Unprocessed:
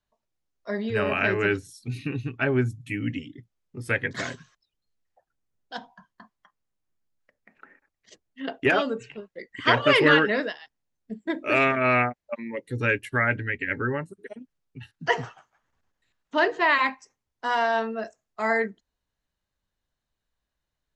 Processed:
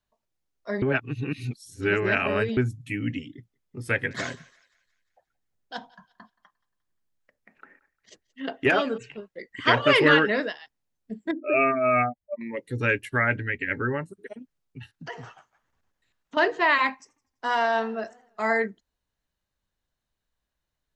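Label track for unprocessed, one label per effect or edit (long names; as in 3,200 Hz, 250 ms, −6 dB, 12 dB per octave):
0.820000	2.570000	reverse
3.360000	8.980000	feedback echo with a high-pass in the loop 176 ms, feedback 48%, high-pass 800 Hz, level −23 dB
11.310000	12.410000	expanding power law on the bin magnitudes exponent 2.3
14.940000	16.370000	downward compressor 3 to 1, threshold −38 dBFS
16.910000	18.490000	feedback echo with a swinging delay time 84 ms, feedback 53%, depth 152 cents, level −22 dB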